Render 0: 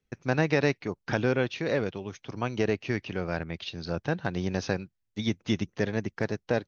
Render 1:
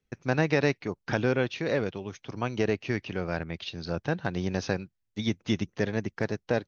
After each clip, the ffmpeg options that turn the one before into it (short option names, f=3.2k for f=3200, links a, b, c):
-af anull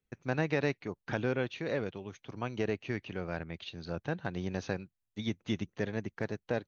-af "equalizer=f=5.2k:w=5.4:g=-9,volume=-6dB"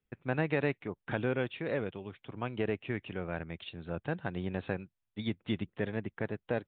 -af "aresample=8000,aresample=44100"